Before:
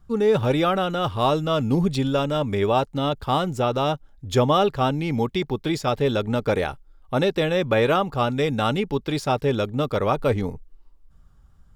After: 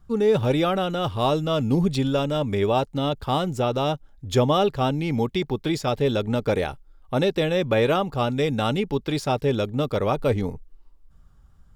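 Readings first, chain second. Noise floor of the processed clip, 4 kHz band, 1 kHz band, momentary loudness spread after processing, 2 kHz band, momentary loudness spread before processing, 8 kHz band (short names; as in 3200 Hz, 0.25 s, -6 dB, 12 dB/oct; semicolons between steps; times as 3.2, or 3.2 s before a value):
-54 dBFS, -0.5 dB, -2.5 dB, 5 LU, -2.0 dB, 6 LU, 0.0 dB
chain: dynamic EQ 1300 Hz, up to -4 dB, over -34 dBFS, Q 1.1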